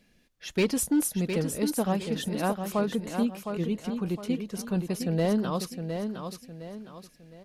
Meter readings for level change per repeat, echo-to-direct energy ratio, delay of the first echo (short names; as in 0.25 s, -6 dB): -8.5 dB, -6.5 dB, 0.711 s